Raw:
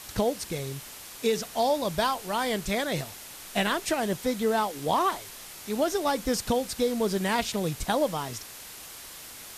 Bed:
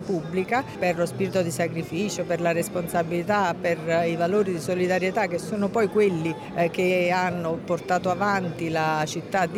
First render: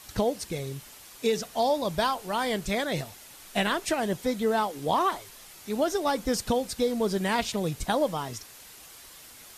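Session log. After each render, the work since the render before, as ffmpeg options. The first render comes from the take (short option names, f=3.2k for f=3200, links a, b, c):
-af "afftdn=nr=6:nf=-44"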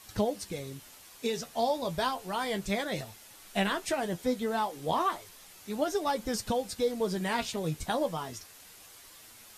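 -af "flanger=delay=9:depth=4:regen=42:speed=0.32:shape=triangular"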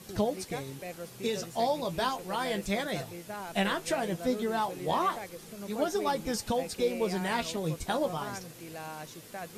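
-filter_complex "[1:a]volume=-18dB[a];[0:a][a]amix=inputs=2:normalize=0"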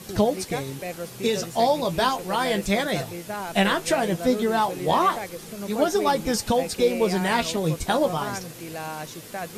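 -af "volume=8dB"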